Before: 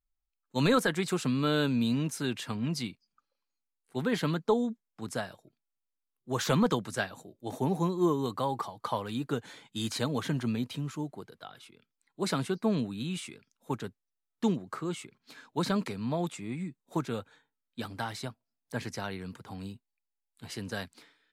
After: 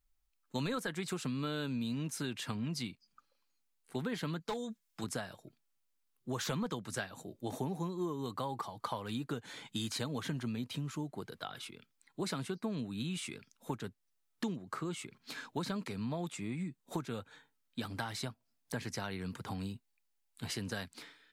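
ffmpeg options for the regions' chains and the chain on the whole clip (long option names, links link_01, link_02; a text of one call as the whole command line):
ffmpeg -i in.wav -filter_complex "[0:a]asettb=1/sr,asplit=3[link_01][link_02][link_03];[link_01]atrim=end=4.404[link_04];[link_02]atrim=start=4.4:end=5.04,asetpts=PTS-STARTPTS,afade=type=in:duration=0.004:curve=qsin,afade=type=out:start_time=0.636:duration=0.004:curve=qsin,tiltshelf=frequency=1500:gain=-5,aecho=1:1:6:0.45,atrim=end_sample=28224,volume=25dB,asoftclip=hard,volume=-25dB[link_05];[link_03]atrim=start=5.036[link_06];[link_04][link_05]acrossfade=duration=0.004:curve1=hsin:curve2=qsin[link_07];[link_07][link_06]acrossfade=duration=0.004:curve1=qsin:curve2=hsin,equalizer=frequency=540:width=0.62:gain=-2.5,acompressor=threshold=-44dB:ratio=4,volume=7dB" out.wav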